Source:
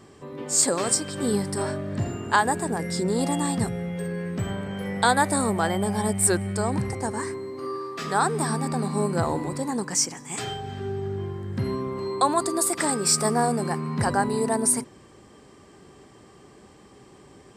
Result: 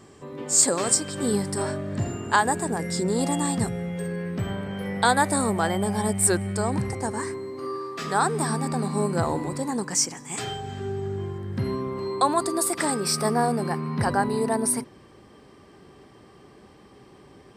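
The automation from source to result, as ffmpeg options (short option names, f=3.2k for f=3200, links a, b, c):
-af "asetnsamples=n=441:p=0,asendcmd='4.16 equalizer g -8;5.05 equalizer g 0.5;10.54 equalizer g 7.5;11.38 equalizer g -4.5;13 equalizer g -13',equalizer=f=7.3k:t=o:w=0.34:g=3.5"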